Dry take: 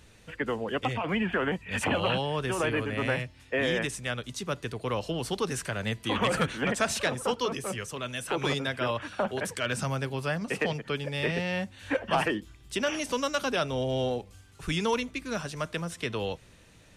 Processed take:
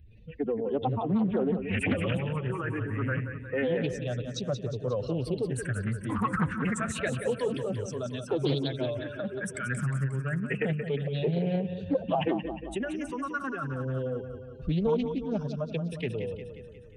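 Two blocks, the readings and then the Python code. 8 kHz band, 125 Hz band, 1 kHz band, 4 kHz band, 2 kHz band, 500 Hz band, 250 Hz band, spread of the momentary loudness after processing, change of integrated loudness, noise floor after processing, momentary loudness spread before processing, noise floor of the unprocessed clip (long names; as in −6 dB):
−7.5 dB, +4.0 dB, −4.0 dB, −9.0 dB, −5.0 dB, 0.0 dB, +2.5 dB, 7 LU, −0.5 dB, −44 dBFS, 7 LU, −55 dBFS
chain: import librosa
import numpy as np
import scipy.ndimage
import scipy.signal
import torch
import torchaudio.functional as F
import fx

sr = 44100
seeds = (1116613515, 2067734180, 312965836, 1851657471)

y = fx.spec_expand(x, sr, power=2.2)
y = fx.phaser_stages(y, sr, stages=4, low_hz=580.0, high_hz=2100.0, hz=0.28, feedback_pct=20)
y = fx.echo_feedback(y, sr, ms=179, feedback_pct=58, wet_db=-9)
y = fx.doppler_dist(y, sr, depth_ms=0.34)
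y = y * librosa.db_to_amplitude(2.0)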